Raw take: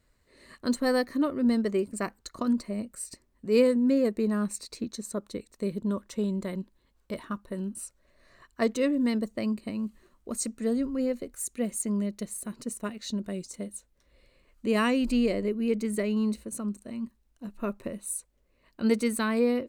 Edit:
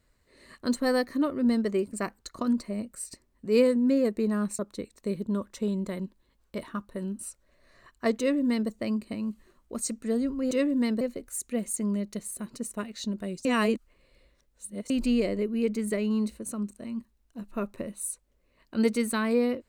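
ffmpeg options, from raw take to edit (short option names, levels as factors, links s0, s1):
-filter_complex "[0:a]asplit=6[s0][s1][s2][s3][s4][s5];[s0]atrim=end=4.592[s6];[s1]atrim=start=5.148:end=11.072[s7];[s2]atrim=start=8.748:end=9.252[s8];[s3]atrim=start=11.068:end=13.512[s9];[s4]atrim=start=13.508:end=14.962,asetpts=PTS-STARTPTS,areverse[s10];[s5]atrim=start=14.958[s11];[s6][s7]acrossfade=d=0.004:c1=hsin:c2=hsin[s12];[s12][s8]acrossfade=d=0.004:c1=hsin:c2=hsin[s13];[s13][s9]acrossfade=d=0.004:c1=hsin:c2=hsin[s14];[s14][s10]acrossfade=d=0.004:c1=hsin:c2=hsin[s15];[s15][s11]acrossfade=d=0.004:c1=hsin:c2=hsin"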